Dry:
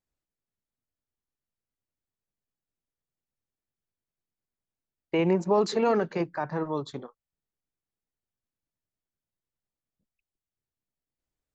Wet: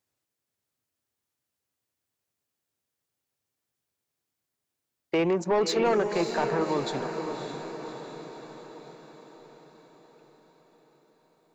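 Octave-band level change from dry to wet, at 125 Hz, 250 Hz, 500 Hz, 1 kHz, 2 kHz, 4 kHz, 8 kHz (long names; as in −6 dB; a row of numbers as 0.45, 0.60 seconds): −2.5 dB, −0.5 dB, +1.0 dB, +1.5 dB, +4.0 dB, +5.5 dB, can't be measured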